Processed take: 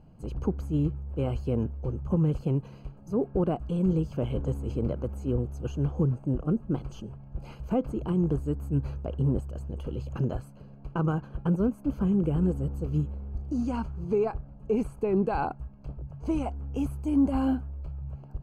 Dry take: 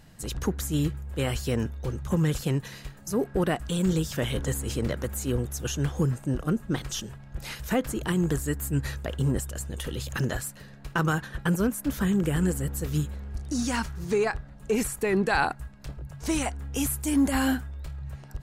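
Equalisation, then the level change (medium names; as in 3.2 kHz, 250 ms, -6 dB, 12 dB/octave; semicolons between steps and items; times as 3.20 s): boxcar filter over 24 samples; 0.0 dB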